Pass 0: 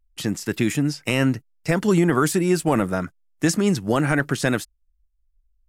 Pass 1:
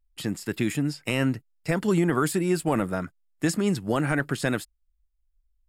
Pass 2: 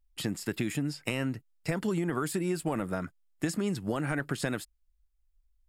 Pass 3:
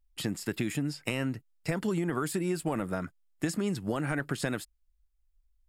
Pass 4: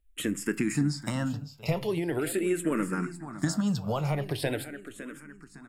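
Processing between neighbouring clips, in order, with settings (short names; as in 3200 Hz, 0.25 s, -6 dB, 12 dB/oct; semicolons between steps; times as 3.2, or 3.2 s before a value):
notch 6000 Hz, Q 5.1; gain -4.5 dB
compressor, threshold -27 dBFS, peak gain reduction 8.5 dB
nothing audible
feedback echo 0.558 s, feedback 39%, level -13 dB; reverb RT60 0.40 s, pre-delay 7 ms, DRR 13.5 dB; endless phaser -0.42 Hz; gain +5 dB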